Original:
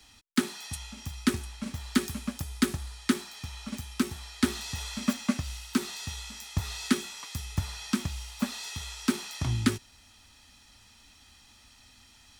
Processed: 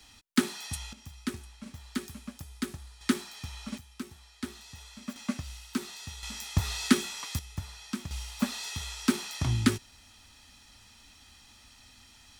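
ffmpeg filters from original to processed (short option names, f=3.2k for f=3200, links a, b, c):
-af "asetnsamples=n=441:p=0,asendcmd='0.93 volume volume -8.5dB;3.01 volume volume -1dB;3.78 volume volume -12dB;5.16 volume volume -5dB;6.23 volume volume 3dB;7.39 volume volume -7dB;8.11 volume volume 1dB',volume=1dB"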